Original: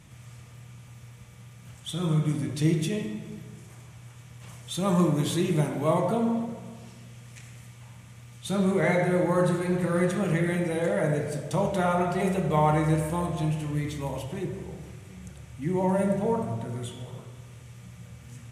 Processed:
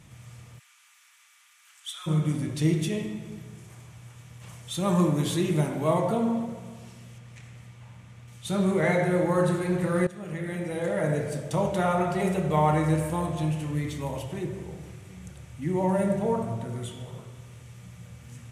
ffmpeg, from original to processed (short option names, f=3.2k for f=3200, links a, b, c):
-filter_complex "[0:a]asplit=3[a][b][c];[a]afade=t=out:st=0.58:d=0.02[d];[b]highpass=f=1.2k:w=0.5412,highpass=f=1.2k:w=1.3066,afade=t=in:st=0.58:d=0.02,afade=t=out:st=2.06:d=0.02[e];[c]afade=t=in:st=2.06:d=0.02[f];[d][e][f]amix=inputs=3:normalize=0,asettb=1/sr,asplit=3[g][h][i];[g]atrim=end=7.184[j];[h]atrim=start=7.18:end=8.28,asetpts=PTS-STARTPTS,afade=t=in:d=0.004:c=qsin,afade=t=out:st=1.096:d=0.004:c=qsin,lowpass=f=3.5k:p=1[k];[i]atrim=start=8.276[l];[j][k]acrossfade=d=0.004:c1=hsin:c2=qsin[m];[m][l]acrossfade=d=0.004:c1=qsin:c2=hsin,asplit=2[n][o];[n]atrim=end=10.07,asetpts=PTS-STARTPTS,afade=t=out:st=10.066:d=0.004:c=hsin:silence=0.141254[p];[o]atrim=start=10.07,asetpts=PTS-STARTPTS,afade=t=in:d=1.07:silence=0.141254[q];[p][q]concat=n=2:v=0:a=1"